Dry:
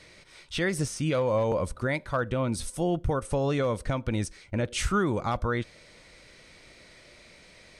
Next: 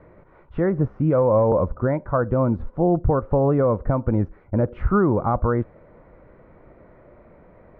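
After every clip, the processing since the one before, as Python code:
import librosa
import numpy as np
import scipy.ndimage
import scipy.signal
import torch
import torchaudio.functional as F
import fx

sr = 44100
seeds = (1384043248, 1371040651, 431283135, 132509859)

y = scipy.signal.sosfilt(scipy.signal.butter(4, 1200.0, 'lowpass', fs=sr, output='sos'), x)
y = y * librosa.db_to_amplitude(8.0)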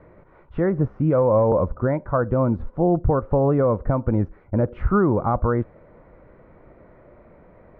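y = x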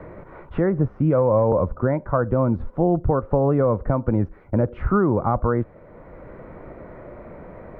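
y = fx.band_squash(x, sr, depth_pct=40)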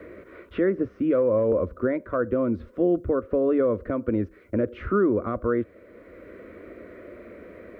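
y = scipy.signal.sosfilt(scipy.signal.butter(2, 88.0, 'highpass', fs=sr, output='sos'), x)
y = fx.high_shelf(y, sr, hz=2400.0, db=10.0)
y = fx.fixed_phaser(y, sr, hz=350.0, stages=4)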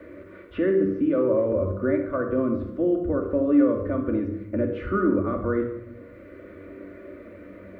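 y = fx.comb_fb(x, sr, f0_hz=96.0, decay_s=0.53, harmonics='all', damping=0.0, mix_pct=70)
y = fx.room_shoebox(y, sr, seeds[0], volume_m3=3400.0, walls='furnished', distance_m=2.5)
y = y * librosa.db_to_amplitude(5.0)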